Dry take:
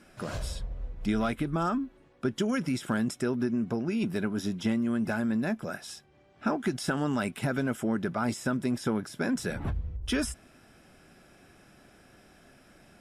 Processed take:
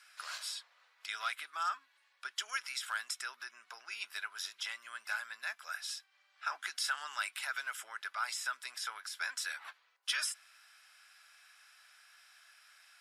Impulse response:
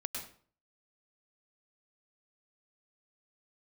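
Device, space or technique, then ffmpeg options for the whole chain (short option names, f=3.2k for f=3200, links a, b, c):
headphones lying on a table: -filter_complex "[0:a]highpass=f=1.2k:w=0.5412,highpass=f=1.2k:w=1.3066,equalizer=f=4.4k:t=o:w=0.49:g=5.5,asettb=1/sr,asplit=3[a][b][c];[a]atrim=end=1.794[d];[b]atrim=start=1.79:end=2.25,asetpts=PTS-STARTPTS,afade=t=in:d=0.004:c=qsin,afade=t=out:st=0.456:d=0.004:c=qsin,bandreject=f=1.3k:w=6.6[e];[c]atrim=start=2.246[f];[d][e]acrossfade=d=0.004:c1=hsin:c2=qsin[g];[g][f]acrossfade=d=0.004:c1=qsin:c2=hsin"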